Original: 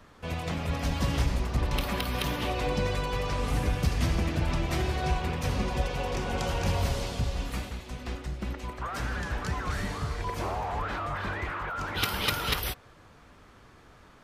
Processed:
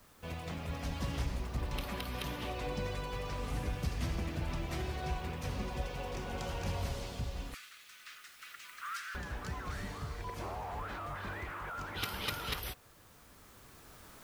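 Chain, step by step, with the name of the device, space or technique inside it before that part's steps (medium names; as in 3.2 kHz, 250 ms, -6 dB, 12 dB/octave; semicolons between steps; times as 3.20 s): 7.54–9.15 s: steep high-pass 1.2 kHz 72 dB/octave; cheap recorder with automatic gain (white noise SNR 27 dB; recorder AGC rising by 5.1 dB/s); trim -9 dB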